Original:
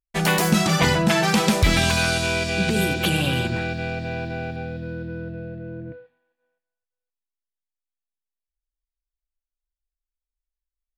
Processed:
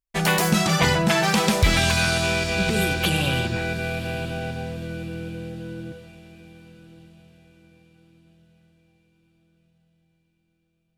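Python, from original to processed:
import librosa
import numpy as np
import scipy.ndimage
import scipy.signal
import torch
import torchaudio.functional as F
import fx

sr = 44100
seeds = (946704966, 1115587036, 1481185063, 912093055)

p1 = fx.dynamic_eq(x, sr, hz=270.0, q=1.7, threshold_db=-35.0, ratio=4.0, max_db=-4)
y = p1 + fx.echo_diffused(p1, sr, ms=1021, feedback_pct=40, wet_db=-15, dry=0)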